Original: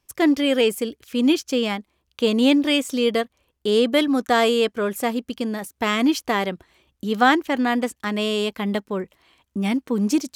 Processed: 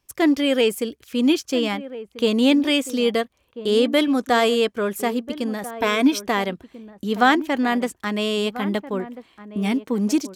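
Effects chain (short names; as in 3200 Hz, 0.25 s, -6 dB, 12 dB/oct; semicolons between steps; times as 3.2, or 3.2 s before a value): 5.74–6.25 ripple EQ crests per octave 1.6, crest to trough 9 dB; outdoor echo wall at 230 m, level -14 dB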